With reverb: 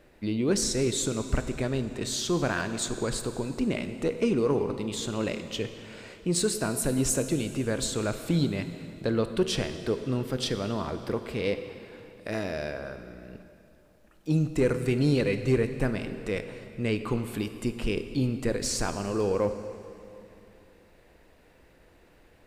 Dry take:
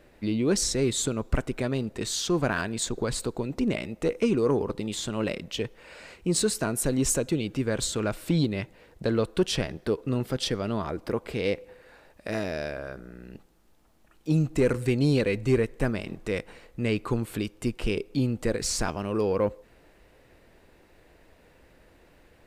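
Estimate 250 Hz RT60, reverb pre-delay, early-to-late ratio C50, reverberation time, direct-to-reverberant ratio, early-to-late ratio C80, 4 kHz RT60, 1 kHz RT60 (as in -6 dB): 2.9 s, 22 ms, 9.5 dB, 2.7 s, 9.0 dB, 10.5 dB, 2.4 s, 2.7 s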